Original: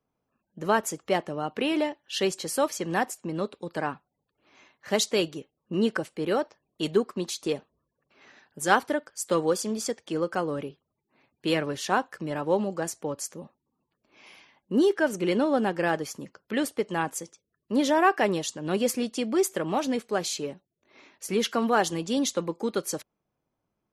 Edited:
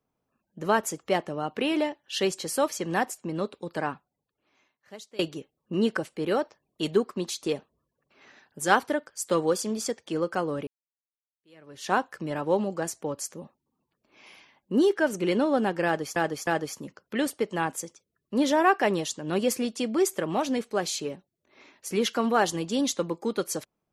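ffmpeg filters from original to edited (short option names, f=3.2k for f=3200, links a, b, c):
-filter_complex "[0:a]asplit=5[a][b][c][d][e];[a]atrim=end=5.19,asetpts=PTS-STARTPTS,afade=t=out:st=3.91:d=1.28:c=qua:silence=0.0794328[f];[b]atrim=start=5.19:end=10.67,asetpts=PTS-STARTPTS,afade=t=in:d=0.004:c=hsin:silence=0.0794328,afade=t=out:st=5.476:d=0.004:c=hsin[g];[c]atrim=start=10.67:end=16.162,asetpts=PTS-STARTPTS,afade=t=in:d=1.23:c=exp[h];[d]atrim=start=15.848:end=16.162[i];[e]atrim=start=15.848[j];[f][g][h]concat=n=3:v=0:a=1[k];[k][i]acrossfade=d=0.004:c1=hsin:c2=hsin[l];[l][j]acrossfade=d=0.004:c1=hsin:c2=hsin"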